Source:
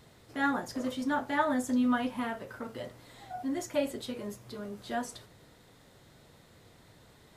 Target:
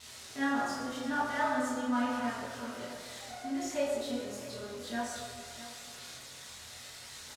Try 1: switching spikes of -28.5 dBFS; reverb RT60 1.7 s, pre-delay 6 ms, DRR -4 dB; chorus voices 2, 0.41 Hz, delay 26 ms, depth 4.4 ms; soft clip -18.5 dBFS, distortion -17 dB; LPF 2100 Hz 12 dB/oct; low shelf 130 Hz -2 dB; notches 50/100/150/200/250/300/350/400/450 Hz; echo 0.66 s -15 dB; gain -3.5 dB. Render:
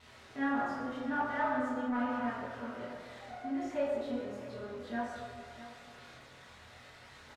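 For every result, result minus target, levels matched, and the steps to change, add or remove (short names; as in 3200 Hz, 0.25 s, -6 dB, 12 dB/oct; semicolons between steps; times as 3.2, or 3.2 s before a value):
8000 Hz band -18.0 dB; soft clip: distortion +13 dB
change: LPF 6300 Hz 12 dB/oct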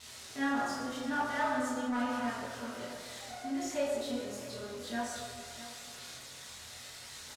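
soft clip: distortion +13 dB
change: soft clip -10 dBFS, distortion -30 dB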